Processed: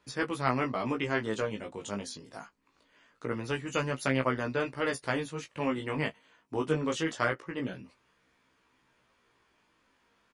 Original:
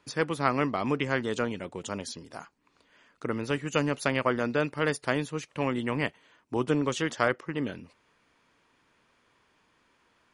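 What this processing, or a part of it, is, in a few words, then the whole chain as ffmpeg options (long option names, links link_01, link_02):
double-tracked vocal: -filter_complex "[0:a]asplit=2[link_01][link_02];[link_02]adelay=15,volume=-9.5dB[link_03];[link_01][link_03]amix=inputs=2:normalize=0,flanger=delay=15.5:depth=4:speed=0.24"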